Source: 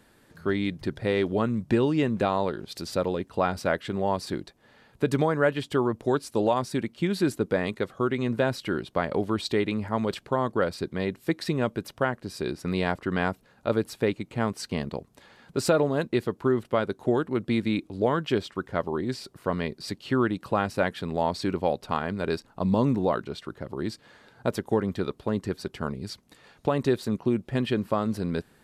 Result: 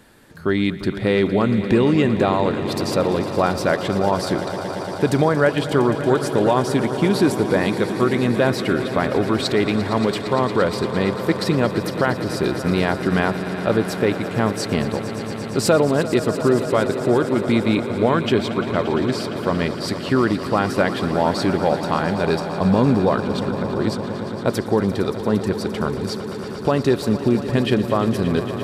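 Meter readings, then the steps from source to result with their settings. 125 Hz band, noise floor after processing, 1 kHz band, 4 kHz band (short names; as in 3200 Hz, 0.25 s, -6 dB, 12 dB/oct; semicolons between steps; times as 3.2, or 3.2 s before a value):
+8.5 dB, -29 dBFS, +7.5 dB, +8.5 dB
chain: in parallel at 0 dB: limiter -18 dBFS, peak gain reduction 7 dB; on the sum: swelling echo 0.115 s, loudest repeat 5, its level -14.5 dB; gain +2 dB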